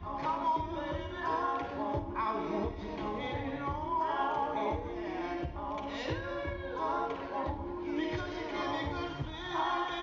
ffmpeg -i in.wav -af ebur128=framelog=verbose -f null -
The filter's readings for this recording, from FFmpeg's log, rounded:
Integrated loudness:
  I:         -35.2 LUFS
  Threshold: -45.2 LUFS
Loudness range:
  LRA:         1.9 LU
  Threshold: -55.4 LUFS
  LRA low:   -36.5 LUFS
  LRA high:  -34.6 LUFS